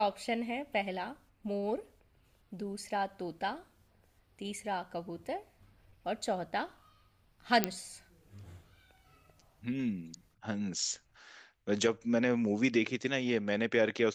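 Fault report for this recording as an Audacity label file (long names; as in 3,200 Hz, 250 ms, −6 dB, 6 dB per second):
7.640000	7.640000	click −10 dBFS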